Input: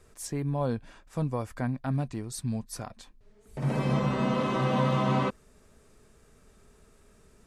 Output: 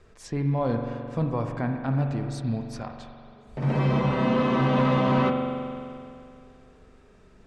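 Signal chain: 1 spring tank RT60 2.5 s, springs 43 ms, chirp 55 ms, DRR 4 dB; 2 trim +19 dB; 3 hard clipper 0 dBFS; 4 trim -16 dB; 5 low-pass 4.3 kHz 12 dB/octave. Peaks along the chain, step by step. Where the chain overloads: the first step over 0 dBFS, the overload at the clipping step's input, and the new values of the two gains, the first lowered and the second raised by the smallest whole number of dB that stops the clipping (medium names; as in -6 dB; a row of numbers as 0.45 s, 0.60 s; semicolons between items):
-12.5 dBFS, +6.5 dBFS, 0.0 dBFS, -16.0 dBFS, -15.5 dBFS; step 2, 6.5 dB; step 2 +12 dB, step 4 -9 dB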